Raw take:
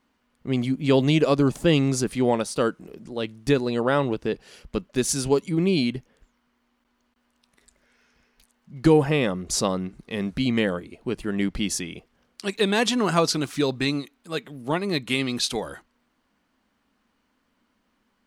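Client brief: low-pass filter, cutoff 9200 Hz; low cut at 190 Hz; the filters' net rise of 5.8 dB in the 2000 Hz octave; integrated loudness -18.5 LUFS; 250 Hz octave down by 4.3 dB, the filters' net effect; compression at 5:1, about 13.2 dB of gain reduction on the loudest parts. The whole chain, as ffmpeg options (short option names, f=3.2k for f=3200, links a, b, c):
-af "highpass=190,lowpass=9.2k,equalizer=f=250:t=o:g=-4,equalizer=f=2k:t=o:g=7.5,acompressor=threshold=-30dB:ratio=5,volume=16dB"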